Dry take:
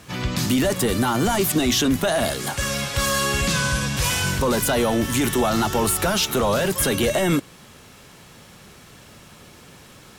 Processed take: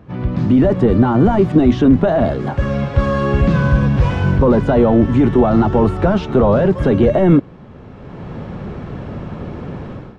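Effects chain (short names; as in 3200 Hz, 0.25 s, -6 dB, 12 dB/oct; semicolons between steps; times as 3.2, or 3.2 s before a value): tilt shelf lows +6.5 dB, about 1300 Hz; AGC gain up to 16 dB; tape spacing loss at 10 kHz 36 dB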